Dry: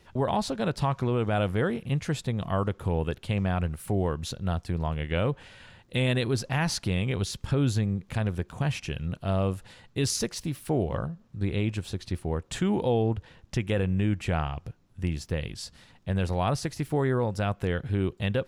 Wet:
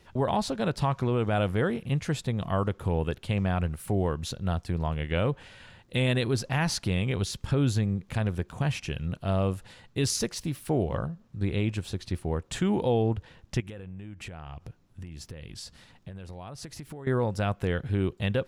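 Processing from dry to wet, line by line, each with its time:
0:13.60–0:17.07: downward compressor 16 to 1, threshold −36 dBFS

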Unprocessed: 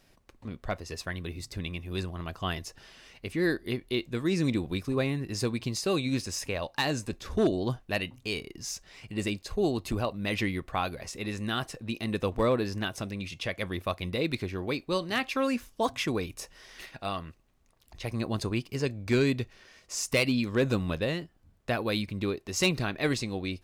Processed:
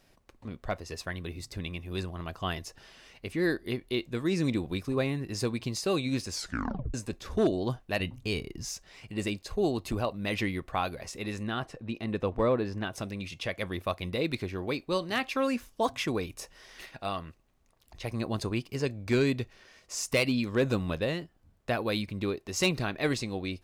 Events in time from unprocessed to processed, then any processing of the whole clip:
0:06.30: tape stop 0.64 s
0:08.00–0:08.69: low-shelf EQ 200 Hz +11 dB
0:11.43–0:12.93: low-pass filter 2,200 Hz 6 dB per octave
whole clip: parametric band 690 Hz +2 dB 1.7 octaves; level −1.5 dB

